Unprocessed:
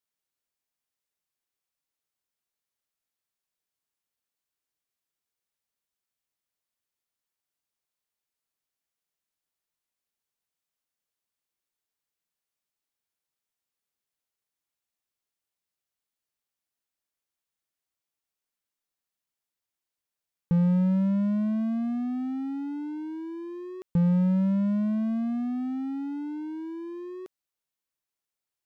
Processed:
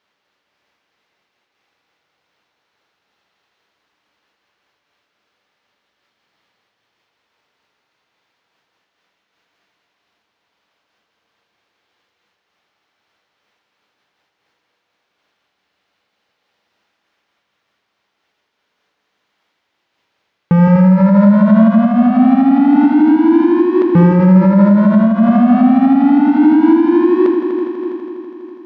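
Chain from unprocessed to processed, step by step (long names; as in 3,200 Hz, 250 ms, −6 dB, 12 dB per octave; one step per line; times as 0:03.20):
high-pass filter 64 Hz 12 dB per octave
low-shelf EQ 190 Hz −11.5 dB
in parallel at −3 dB: wave folding −36 dBFS
on the sum: high-frequency loss of the air 260 metres
echo machine with several playback heads 82 ms, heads all three, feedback 73%, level −12 dB
on a send at −8 dB: convolution reverb RT60 2.7 s, pre-delay 5 ms
on the sum: boost into a limiter +25.5 dB
amplitude modulation by smooth noise, depth 50%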